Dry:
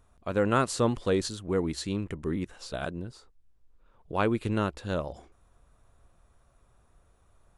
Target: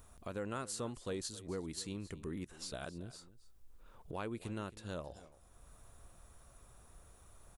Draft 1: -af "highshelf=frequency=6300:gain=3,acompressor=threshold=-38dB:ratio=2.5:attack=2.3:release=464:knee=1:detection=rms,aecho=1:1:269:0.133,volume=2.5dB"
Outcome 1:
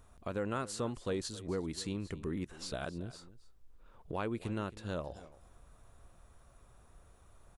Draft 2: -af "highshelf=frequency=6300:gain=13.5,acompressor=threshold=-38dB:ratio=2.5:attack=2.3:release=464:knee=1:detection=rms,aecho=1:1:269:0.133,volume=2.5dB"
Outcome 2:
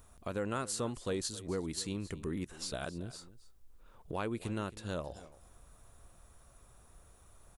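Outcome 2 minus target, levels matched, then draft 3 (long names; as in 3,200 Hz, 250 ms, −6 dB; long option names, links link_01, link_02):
downward compressor: peak gain reduction −5 dB
-af "highshelf=frequency=6300:gain=13.5,acompressor=threshold=-46dB:ratio=2.5:attack=2.3:release=464:knee=1:detection=rms,aecho=1:1:269:0.133,volume=2.5dB"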